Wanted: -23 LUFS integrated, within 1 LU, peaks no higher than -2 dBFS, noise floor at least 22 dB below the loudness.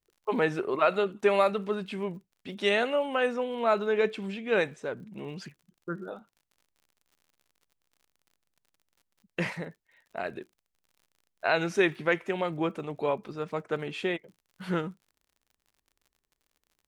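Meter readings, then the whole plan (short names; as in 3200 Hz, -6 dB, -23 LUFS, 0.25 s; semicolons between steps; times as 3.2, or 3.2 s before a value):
ticks 55/s; loudness -29.5 LUFS; peak -11.0 dBFS; loudness target -23.0 LUFS
-> de-click; gain +6.5 dB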